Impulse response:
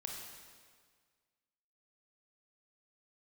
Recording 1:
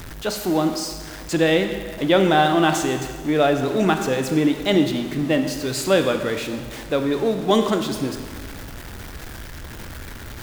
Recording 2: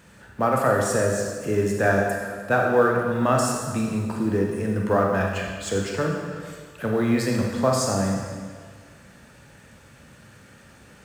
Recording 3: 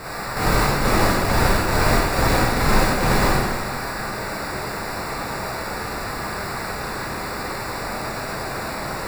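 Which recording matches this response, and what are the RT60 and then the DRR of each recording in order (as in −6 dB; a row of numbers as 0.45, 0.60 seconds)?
2; 1.7, 1.7, 1.7 seconds; 6.0, −0.5, −7.5 decibels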